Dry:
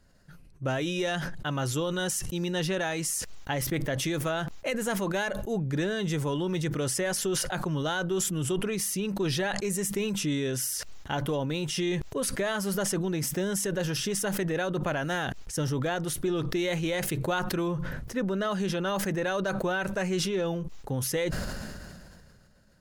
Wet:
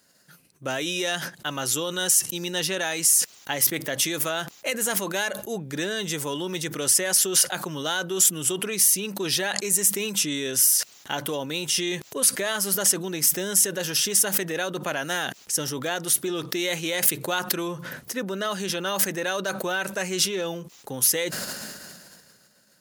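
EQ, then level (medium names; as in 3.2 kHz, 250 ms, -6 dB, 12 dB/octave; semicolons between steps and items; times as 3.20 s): high-pass 210 Hz 12 dB/octave; treble shelf 2.2 kHz +10 dB; treble shelf 11 kHz +8.5 dB; 0.0 dB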